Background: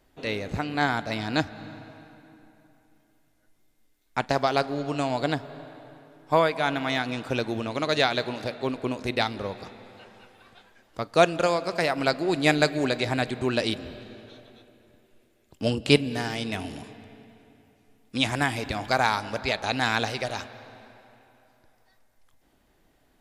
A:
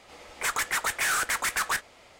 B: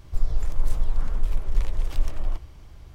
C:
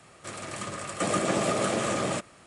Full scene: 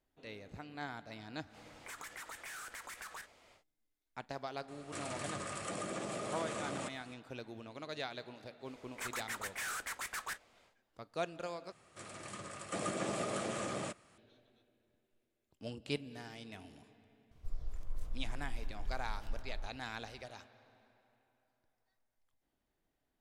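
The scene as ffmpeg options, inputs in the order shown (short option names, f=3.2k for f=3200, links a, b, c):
-filter_complex "[1:a]asplit=2[a][b];[3:a]asplit=2[c][d];[0:a]volume=-19dB[e];[a]acompressor=threshold=-41dB:ratio=3:attack=14:release=39:knee=1:detection=rms[f];[c]acompressor=threshold=-32dB:ratio=6:attack=3.2:release=140:knee=1:detection=peak[g];[2:a]bandreject=f=860:w=15[h];[e]asplit=2[i][j];[i]atrim=end=11.724[k];[d]atrim=end=2.46,asetpts=PTS-STARTPTS,volume=-11dB[l];[j]atrim=start=14.176[m];[f]atrim=end=2.19,asetpts=PTS-STARTPTS,volume=-10dB,afade=t=in:d=0.1,afade=t=out:st=2.09:d=0.1,adelay=1450[n];[g]atrim=end=2.46,asetpts=PTS-STARTPTS,volume=-5dB,afade=t=in:d=0.004:c=hsin,afade=t=out:st=2.456:d=0.004:c=hsin,adelay=4680[o];[b]atrim=end=2.19,asetpts=PTS-STARTPTS,volume=-14dB,afade=t=in:d=0.1,afade=t=out:st=2.09:d=0.1,adelay=8570[p];[h]atrim=end=2.94,asetpts=PTS-STARTPTS,volume=-17.5dB,afade=t=in:d=0.004:c=hsin,afade=t=out:st=2.936:d=0.004:c=hsin,adelay=17310[q];[k][l]acrossfade=d=0.004:c1=hsin:c2=hsin[r];[r][m]acrossfade=d=0.004:c1=hsin:c2=hsin[s];[s][n][o][p][q]amix=inputs=5:normalize=0"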